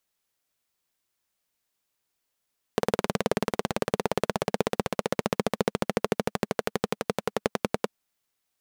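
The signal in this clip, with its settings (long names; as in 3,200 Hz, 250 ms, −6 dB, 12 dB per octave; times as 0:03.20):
pulse-train model of a single-cylinder engine, changing speed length 5.10 s, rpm 2,300, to 1,200, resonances 210/440 Hz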